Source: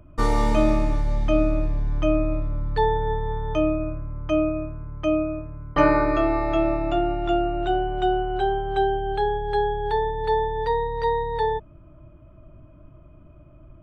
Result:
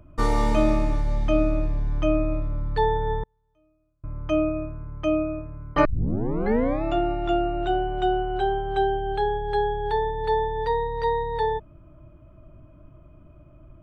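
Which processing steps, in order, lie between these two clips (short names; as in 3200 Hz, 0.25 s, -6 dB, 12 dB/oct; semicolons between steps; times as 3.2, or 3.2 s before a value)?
3.23–4.04 flipped gate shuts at -25 dBFS, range -42 dB; 5.85 tape start 0.99 s; gain -1 dB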